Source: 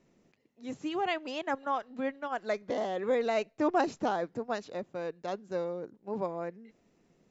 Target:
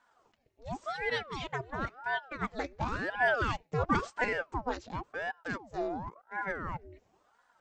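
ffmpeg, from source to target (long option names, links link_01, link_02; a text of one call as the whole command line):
ffmpeg -i in.wav -af "atempo=0.96,aecho=1:1:4.1:0.6,aeval=exprs='val(0)*sin(2*PI*690*n/s+690*0.8/0.94*sin(2*PI*0.94*n/s))':channel_layout=same" out.wav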